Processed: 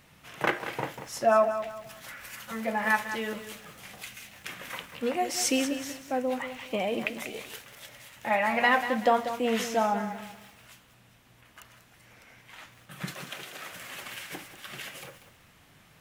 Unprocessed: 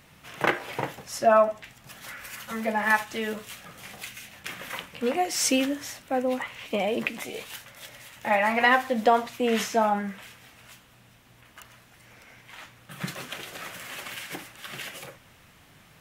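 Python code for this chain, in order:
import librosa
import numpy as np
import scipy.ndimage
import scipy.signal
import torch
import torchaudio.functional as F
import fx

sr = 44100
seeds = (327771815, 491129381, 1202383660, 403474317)

y = fx.highpass(x, sr, hz=230.0, slope=6, at=(13.14, 13.73))
y = fx.echo_crushed(y, sr, ms=190, feedback_pct=35, bits=8, wet_db=-10.5)
y = F.gain(torch.from_numpy(y), -3.0).numpy()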